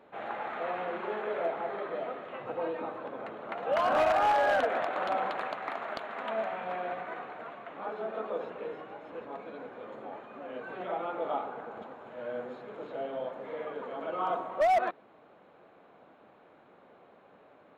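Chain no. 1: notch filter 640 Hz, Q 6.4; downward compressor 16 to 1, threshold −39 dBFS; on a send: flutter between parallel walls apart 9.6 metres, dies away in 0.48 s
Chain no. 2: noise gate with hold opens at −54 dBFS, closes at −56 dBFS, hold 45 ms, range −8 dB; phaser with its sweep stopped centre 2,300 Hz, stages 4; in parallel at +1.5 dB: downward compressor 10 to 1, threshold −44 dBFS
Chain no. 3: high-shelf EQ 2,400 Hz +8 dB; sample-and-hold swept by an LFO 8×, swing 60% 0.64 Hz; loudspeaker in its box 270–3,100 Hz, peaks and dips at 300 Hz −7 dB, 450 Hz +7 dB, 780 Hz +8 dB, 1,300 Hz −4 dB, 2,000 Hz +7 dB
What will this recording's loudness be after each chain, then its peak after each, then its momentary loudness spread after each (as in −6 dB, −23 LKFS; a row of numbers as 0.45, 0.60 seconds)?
−43.0, −36.5, −28.5 LKFS; −26.5, −20.0, −9.5 dBFS; 17, 24, 19 LU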